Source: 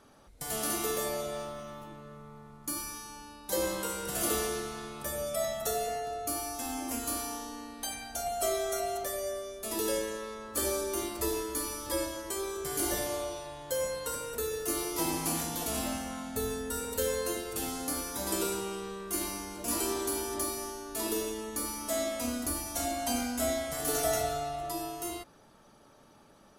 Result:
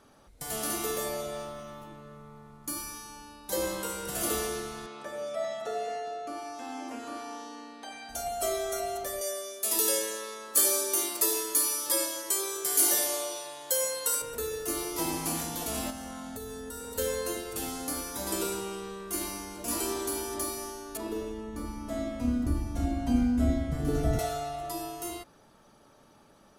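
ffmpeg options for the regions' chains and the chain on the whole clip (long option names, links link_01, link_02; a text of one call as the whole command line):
ffmpeg -i in.wav -filter_complex "[0:a]asettb=1/sr,asplit=3[link_01][link_02][link_03];[link_01]atrim=end=4.864[link_04];[link_02]atrim=start=4.86:end=8.09,asetpts=PTS-STARTPTS,afade=type=in:duration=0.004:curve=qsin,afade=type=out:start_time=3.226:duration=0.004:curve=qsin,acrossover=split=2600[link_05][link_06];[link_06]acompressor=threshold=-43dB:ratio=4:attack=1:release=60[link_07];[link_05][link_07]amix=inputs=2:normalize=0,highpass=260,lowpass=5700[link_08];[link_03]atrim=start=8.086[link_09];[link_04][link_08]acrossfade=duration=0.004:curve1=hsin:curve2=qsin[link_10];[link_10][link_09]acrossfade=duration=0.004:curve1=qsin:curve2=hsin,asettb=1/sr,asplit=3[link_11][link_12][link_13];[link_11]atrim=end=9.214[link_14];[link_12]atrim=start=9.21:end=14.22,asetpts=PTS-STARTPTS,afade=type=in:duration=0.004:curve=qsin,afade=type=out:start_time=5.006:duration=0.004:curve=qsin,highpass=320,highshelf=frequency=3600:gain=11.5[link_15];[link_13]atrim=start=14.216[link_16];[link_14][link_15]acrossfade=duration=0.004:curve1=hsin:curve2=qsin[link_17];[link_17][link_16]acrossfade=duration=0.004:curve1=qsin:curve2=hsin,asettb=1/sr,asplit=3[link_18][link_19][link_20];[link_18]atrim=end=15.904[link_21];[link_19]atrim=start=15.9:end=16.98,asetpts=PTS-STARTPTS,afade=type=in:duration=0.004:curve=qsin,afade=type=out:start_time=1.076:duration=0.004:curve=qsin,equalizer=frequency=2400:width_type=o:width=0.27:gain=-7,acompressor=threshold=-36dB:ratio=6:attack=3.2:release=140:knee=1:detection=peak[link_22];[link_20]atrim=start=16.976[link_23];[link_21][link_22]acrossfade=duration=0.004:curve1=hsin:curve2=qsin[link_24];[link_24][link_23]acrossfade=duration=0.004:curve1=qsin:curve2=hsin,asettb=1/sr,asplit=3[link_25][link_26][link_27];[link_25]atrim=end=20.974[link_28];[link_26]atrim=start=20.97:end=24.19,asetpts=PTS-STARTPTS,afade=type=in:duration=0.004:curve=qsin,afade=type=out:start_time=3.216:duration=0.004:curve=qsin,lowpass=frequency=1200:poles=1,asubboost=boost=10:cutoff=250[link_29];[link_27]atrim=start=24.186[link_30];[link_28][link_29]acrossfade=duration=0.004:curve1=hsin:curve2=qsin[link_31];[link_31][link_30]acrossfade=duration=0.004:curve1=qsin:curve2=hsin" out.wav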